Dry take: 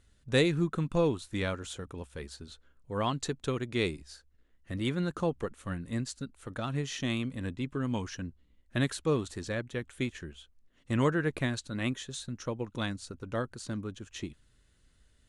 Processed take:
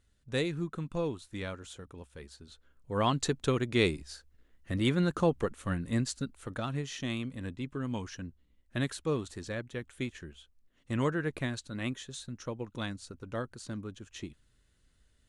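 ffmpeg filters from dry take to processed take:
-af "volume=3.5dB,afade=t=in:st=2.43:d=0.73:silence=0.334965,afade=t=out:st=6.24:d=0.6:silence=0.473151"

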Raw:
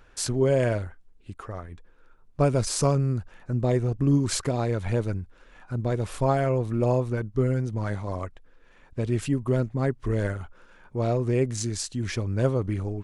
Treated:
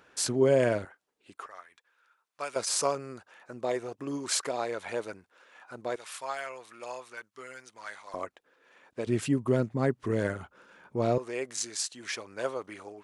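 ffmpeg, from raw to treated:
-af "asetnsamples=n=441:p=0,asendcmd='0.85 highpass f 460;1.46 highpass f 1300;2.56 highpass f 550;5.96 highpass f 1400;8.14 highpass f 370;9.07 highpass f 160;11.18 highpass f 680',highpass=190"

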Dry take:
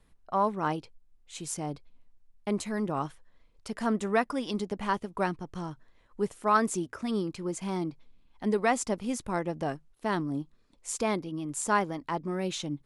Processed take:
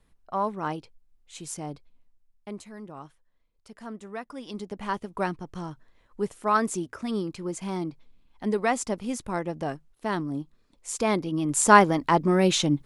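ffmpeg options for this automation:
-af "volume=21dB,afade=t=out:st=1.66:d=1.05:silence=0.316228,afade=t=in:st=4.21:d=0.95:silence=0.251189,afade=t=in:st=10.91:d=0.83:silence=0.316228"

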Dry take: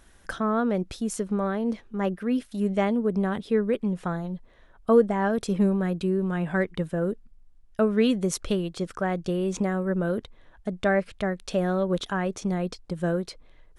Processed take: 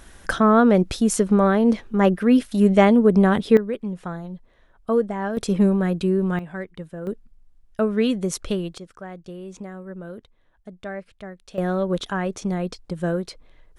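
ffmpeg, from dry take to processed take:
-af "asetnsamples=n=441:p=0,asendcmd='3.57 volume volume -2dB;5.37 volume volume 4.5dB;6.39 volume volume -7dB;7.07 volume volume 1dB;8.78 volume volume -10dB;11.58 volume volume 2dB',volume=9.5dB"

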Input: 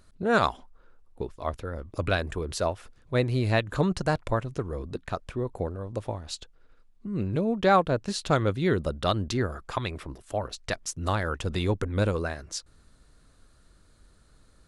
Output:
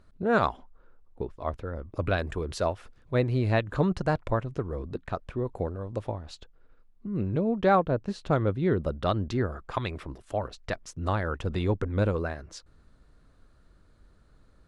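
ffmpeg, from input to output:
-af "asetnsamples=n=441:p=0,asendcmd='2.18 lowpass f 4000;3.15 lowpass f 2100;5.46 lowpass f 3700;6.11 lowpass f 1600;7.75 lowpass f 1000;8.82 lowpass f 1700;9.74 lowpass f 3900;10.49 lowpass f 1800',lowpass=f=1.7k:p=1"

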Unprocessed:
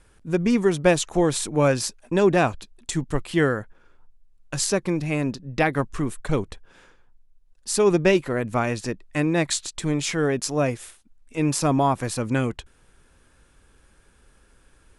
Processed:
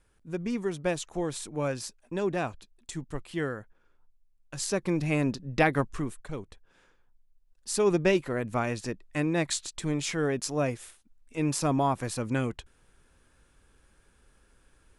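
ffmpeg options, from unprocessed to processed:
-af "volume=6.5dB,afade=t=in:st=4.54:d=0.5:silence=0.354813,afade=t=out:st=5.71:d=0.6:silence=0.251189,afade=t=in:st=6.31:d=1.58:silence=0.375837"

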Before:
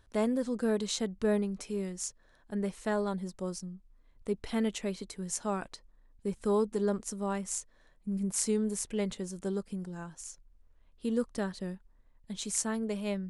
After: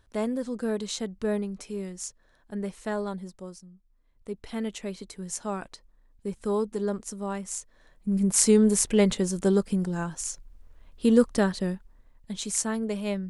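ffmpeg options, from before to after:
-af "volume=20.5dB,afade=t=out:st=3.07:d=0.57:silence=0.354813,afade=t=in:st=3.64:d=1.52:silence=0.334965,afade=t=in:st=7.57:d=1.1:silence=0.298538,afade=t=out:st=11.13:d=1.3:silence=0.421697"

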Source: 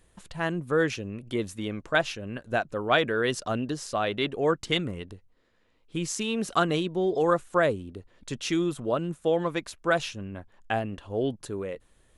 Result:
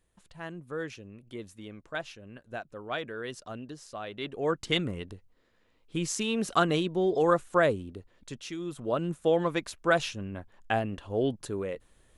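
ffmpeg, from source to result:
-af "volume=12dB,afade=t=in:st=4.12:d=0.69:silence=0.281838,afade=t=out:st=7.81:d=0.76:silence=0.251189,afade=t=in:st=8.57:d=0.51:silence=0.237137"

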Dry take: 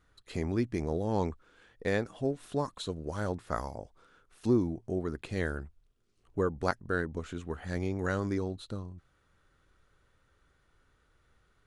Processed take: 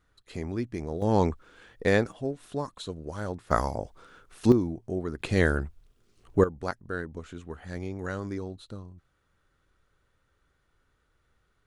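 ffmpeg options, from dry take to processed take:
-af "asetnsamples=n=441:p=0,asendcmd='1.02 volume volume 7dB;2.12 volume volume -0.5dB;3.51 volume volume 9dB;4.52 volume volume 1.5dB;5.2 volume volume 9.5dB;6.44 volume volume -2.5dB',volume=-1.5dB"

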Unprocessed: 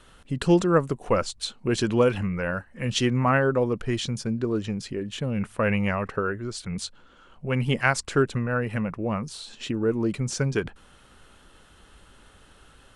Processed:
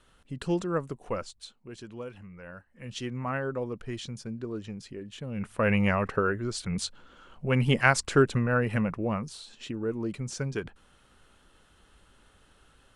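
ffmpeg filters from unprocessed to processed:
-af "volume=11dB,afade=t=out:st=1.07:d=0.6:silence=0.298538,afade=t=in:st=2.27:d=1.25:silence=0.316228,afade=t=in:st=5.27:d=0.54:silence=0.316228,afade=t=out:st=8.8:d=0.69:silence=0.421697"

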